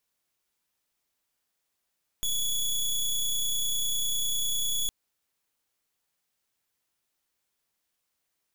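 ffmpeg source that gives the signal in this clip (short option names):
-f lavfi -i "aevalsrc='0.0422*(2*lt(mod(3390*t,1),0.18)-1)':d=2.66:s=44100"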